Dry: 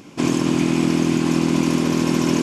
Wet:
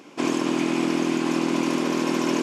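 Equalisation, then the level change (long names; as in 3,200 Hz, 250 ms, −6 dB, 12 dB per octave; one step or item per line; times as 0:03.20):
high-pass filter 330 Hz 12 dB per octave
high-shelf EQ 4,200 Hz −7 dB
0.0 dB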